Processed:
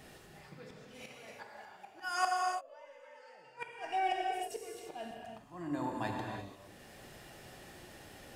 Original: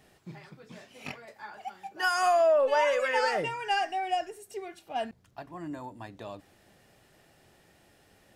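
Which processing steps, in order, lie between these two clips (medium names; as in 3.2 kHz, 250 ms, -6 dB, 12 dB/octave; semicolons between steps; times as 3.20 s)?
slow attack 699 ms; inverted gate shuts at -26 dBFS, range -38 dB; gated-style reverb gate 370 ms flat, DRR -0.5 dB; trim +5.5 dB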